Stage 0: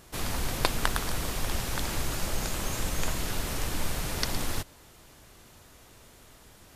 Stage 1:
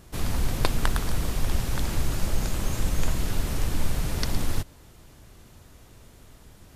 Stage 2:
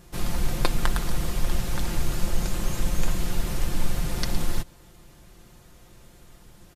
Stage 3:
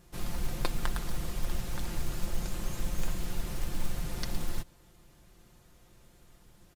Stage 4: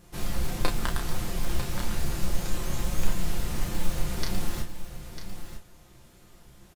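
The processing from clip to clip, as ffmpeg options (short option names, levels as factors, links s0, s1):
-af "lowshelf=f=300:g=9.5,volume=0.794"
-af "aecho=1:1:5.7:0.51,volume=0.891"
-af "acrusher=bits=7:mode=log:mix=0:aa=0.000001,volume=0.398"
-filter_complex "[0:a]flanger=delay=9.5:depth=6:regen=42:speed=1.6:shape=sinusoidal,asplit=2[s0][s1];[s1]adelay=32,volume=0.562[s2];[s0][s2]amix=inputs=2:normalize=0,aecho=1:1:948:0.299,volume=2.51"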